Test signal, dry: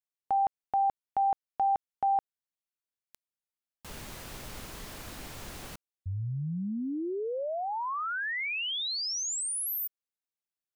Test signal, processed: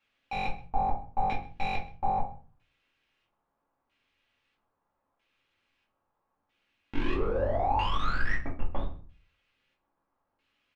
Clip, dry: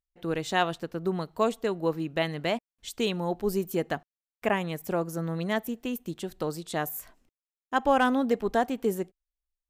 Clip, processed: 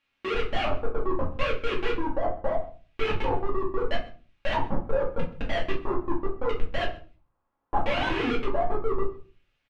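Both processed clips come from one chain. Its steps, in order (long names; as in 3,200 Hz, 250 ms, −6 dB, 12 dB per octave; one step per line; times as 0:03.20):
three sine waves on the formant tracks
low-shelf EQ 200 Hz −12 dB
in parallel at +1 dB: brickwall limiter −24 dBFS
on the sum: comparator with hysteresis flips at −27 dBFS
bit-depth reduction 12 bits, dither triangular
auto-filter low-pass square 0.77 Hz 970–2,700 Hz
slap from a distant wall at 22 metres, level −20 dB
rectangular room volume 200 cubic metres, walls furnished, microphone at 2.3 metres
level −5.5 dB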